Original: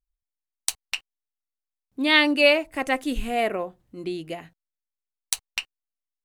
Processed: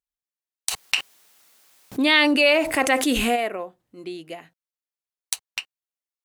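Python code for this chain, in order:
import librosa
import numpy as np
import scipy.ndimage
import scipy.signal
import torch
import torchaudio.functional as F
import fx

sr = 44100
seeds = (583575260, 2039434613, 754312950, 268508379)

y = fx.highpass(x, sr, hz=320.0, slope=6)
y = fx.env_flatten(y, sr, amount_pct=70, at=(0.7, 3.35), fade=0.02)
y = y * librosa.db_to_amplitude(-1.0)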